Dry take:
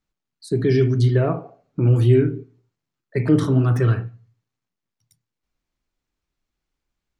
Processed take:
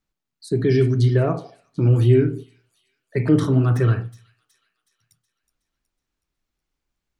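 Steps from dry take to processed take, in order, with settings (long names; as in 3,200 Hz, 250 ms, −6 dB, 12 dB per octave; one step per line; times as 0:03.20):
delay with a high-pass on its return 370 ms, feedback 49%, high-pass 4,600 Hz, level −12 dB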